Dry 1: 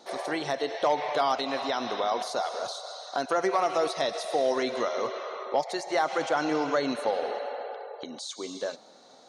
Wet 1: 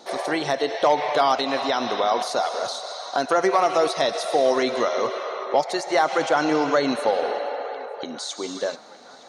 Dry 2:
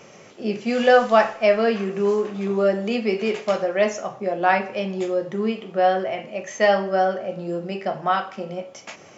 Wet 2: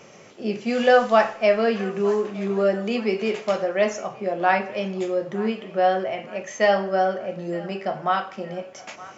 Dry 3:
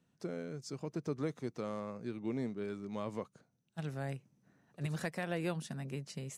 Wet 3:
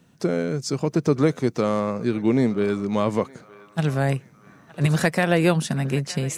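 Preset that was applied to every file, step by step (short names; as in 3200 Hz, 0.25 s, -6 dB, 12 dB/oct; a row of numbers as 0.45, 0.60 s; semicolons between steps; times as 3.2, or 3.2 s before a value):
narrowing echo 0.916 s, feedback 59%, band-pass 1500 Hz, level -17.5 dB; match loudness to -23 LUFS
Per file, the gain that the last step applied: +6.0, -1.0, +17.5 dB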